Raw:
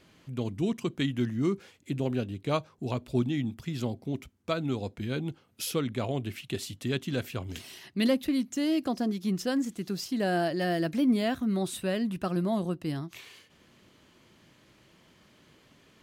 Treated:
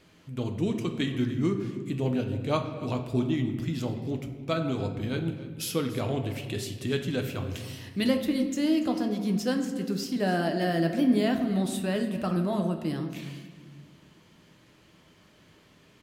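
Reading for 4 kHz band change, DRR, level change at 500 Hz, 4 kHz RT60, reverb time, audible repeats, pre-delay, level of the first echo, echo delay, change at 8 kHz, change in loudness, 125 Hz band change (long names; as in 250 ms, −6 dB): +1.0 dB, 4.0 dB, +1.5 dB, 0.90 s, 1.5 s, 1, 6 ms, −17.5 dB, 287 ms, +1.0 dB, +2.0 dB, +2.5 dB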